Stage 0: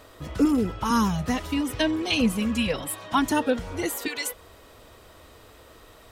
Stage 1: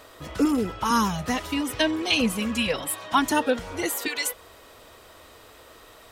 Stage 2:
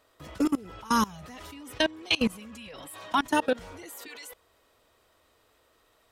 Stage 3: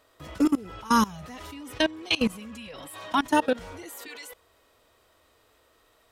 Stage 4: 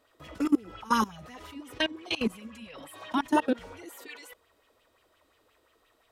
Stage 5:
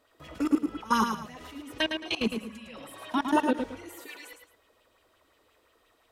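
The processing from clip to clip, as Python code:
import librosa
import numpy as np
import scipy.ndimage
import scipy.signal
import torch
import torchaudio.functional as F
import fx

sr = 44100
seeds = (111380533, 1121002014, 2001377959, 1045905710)

y1 = fx.low_shelf(x, sr, hz=290.0, db=-8.5)
y1 = y1 * librosa.db_to_amplitude(3.0)
y2 = fx.level_steps(y1, sr, step_db=22)
y3 = fx.hpss(y2, sr, part='harmonic', gain_db=4)
y4 = fx.bell_lfo(y3, sr, hz=5.7, low_hz=240.0, high_hz=3100.0, db=11)
y4 = y4 * librosa.db_to_amplitude(-7.0)
y5 = fx.echo_multitap(y4, sr, ms=(108, 219), db=(-6.0, -16.5))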